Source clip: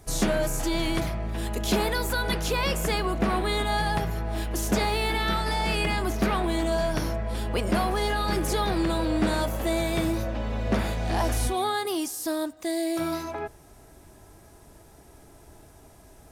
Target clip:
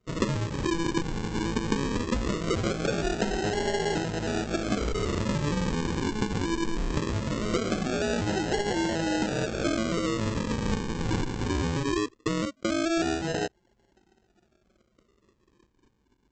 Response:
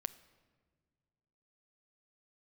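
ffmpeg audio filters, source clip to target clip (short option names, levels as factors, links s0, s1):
-af "highpass=150,lowpass=2500,anlmdn=0.158,acompressor=threshold=0.0316:ratio=20,aresample=16000,acrusher=samples=19:mix=1:aa=0.000001:lfo=1:lforange=11.4:lforate=0.2,aresample=44100,volume=2.11"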